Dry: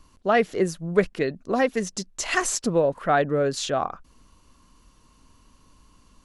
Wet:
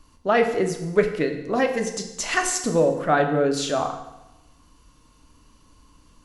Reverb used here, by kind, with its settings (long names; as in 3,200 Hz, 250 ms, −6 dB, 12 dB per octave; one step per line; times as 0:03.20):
feedback delay network reverb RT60 0.96 s, low-frequency decay 1.1×, high-frequency decay 0.9×, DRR 4 dB